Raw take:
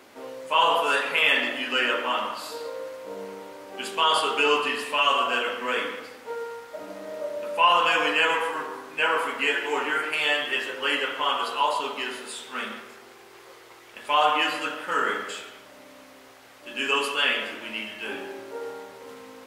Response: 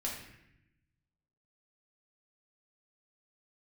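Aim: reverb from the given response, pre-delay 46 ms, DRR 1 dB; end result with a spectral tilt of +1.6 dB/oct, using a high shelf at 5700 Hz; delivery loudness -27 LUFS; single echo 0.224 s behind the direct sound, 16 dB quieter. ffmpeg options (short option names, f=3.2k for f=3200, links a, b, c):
-filter_complex "[0:a]highshelf=f=5.7k:g=-7,aecho=1:1:224:0.158,asplit=2[a][b];[1:a]atrim=start_sample=2205,adelay=46[c];[b][c]afir=irnorm=-1:irlink=0,volume=-3.5dB[d];[a][d]amix=inputs=2:normalize=0,volume=-4.5dB"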